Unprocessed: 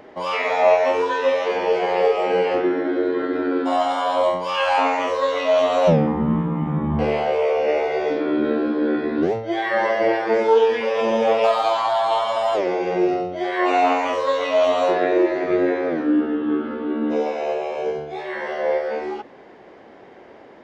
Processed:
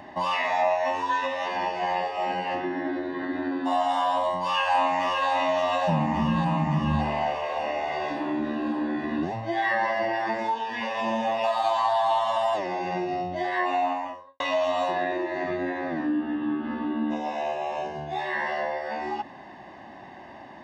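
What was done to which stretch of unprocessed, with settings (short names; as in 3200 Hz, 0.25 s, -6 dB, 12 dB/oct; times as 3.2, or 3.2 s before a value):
4.17–5.3 echo throw 0.57 s, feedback 70%, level -3.5 dB
13.42–14.4 studio fade out
whole clip: HPF 46 Hz; compressor 2.5:1, threshold -27 dBFS; comb 1.1 ms, depth 89%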